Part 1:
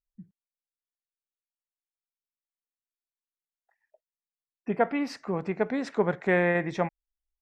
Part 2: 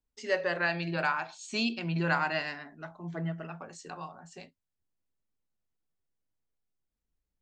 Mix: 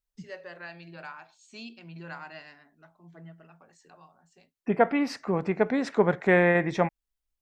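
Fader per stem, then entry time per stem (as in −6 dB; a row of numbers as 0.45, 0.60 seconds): +3.0, −13.0 decibels; 0.00, 0.00 seconds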